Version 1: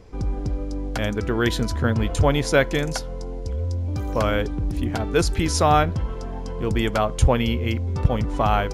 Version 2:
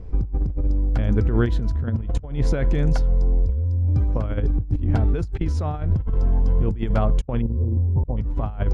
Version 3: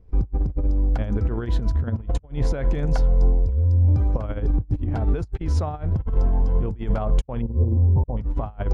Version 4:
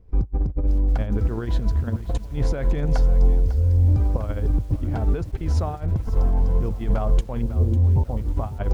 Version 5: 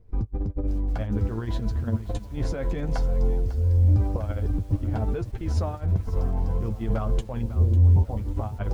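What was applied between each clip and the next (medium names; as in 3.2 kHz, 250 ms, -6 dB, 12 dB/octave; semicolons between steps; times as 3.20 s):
spectral selection erased 7.41–8.17 s, 1.1–8.4 kHz; RIAA curve playback; compressor with a negative ratio -13 dBFS, ratio -0.5; trim -6.5 dB
dynamic bell 790 Hz, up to +5 dB, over -40 dBFS, Q 0.99; peak limiter -16.5 dBFS, peak gain reduction 12 dB; upward expansion 2.5:1, over -34 dBFS; trim +6.5 dB
bit-crushed delay 549 ms, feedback 35%, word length 7-bit, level -14 dB
flange 0.57 Hz, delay 8.5 ms, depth 2.7 ms, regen +33%; trim +1.5 dB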